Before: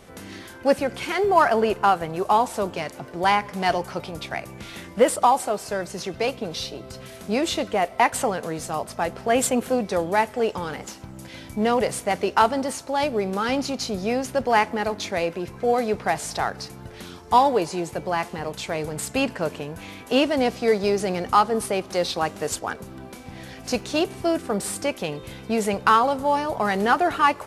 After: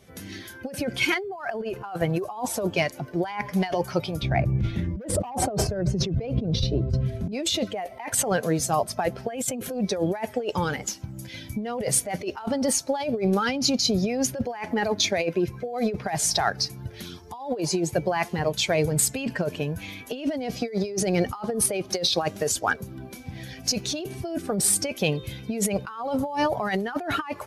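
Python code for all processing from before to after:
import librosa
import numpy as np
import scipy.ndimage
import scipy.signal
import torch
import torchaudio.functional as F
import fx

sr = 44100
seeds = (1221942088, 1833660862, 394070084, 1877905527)

y = fx.chain(x, sr, fx.tilt_eq(slope=-3.5),
    fx.overload_stage(gain_db=12.5),
    fx.sustainer(db_per_s=98.0), at=(4.22, 7.32))
y = fx.bin_expand(y, sr, power=1.5)
y = scipy.signal.sosfilt(scipy.signal.butter(2, 58.0, 'highpass', fs=sr, output='sos'), y)
y = fx.over_compress(y, sr, threshold_db=-34.0, ratio=-1.0)
y = F.gain(torch.from_numpy(y), 7.0).numpy()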